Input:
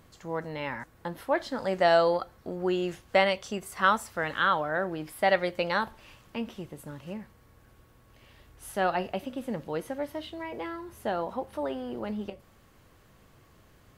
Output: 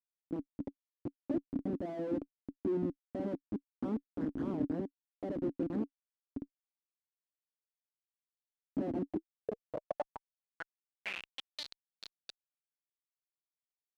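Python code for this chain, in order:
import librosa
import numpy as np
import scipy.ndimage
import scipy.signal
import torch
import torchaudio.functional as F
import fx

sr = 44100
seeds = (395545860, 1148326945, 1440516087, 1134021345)

y = fx.env_flanger(x, sr, rest_ms=6.2, full_db=-23.0)
y = fx.schmitt(y, sr, flips_db=-30.0)
y = fx.filter_sweep_bandpass(y, sr, from_hz=280.0, to_hz=4200.0, start_s=9.06, end_s=11.63, q=7.4)
y = y * librosa.db_to_amplitude(16.0)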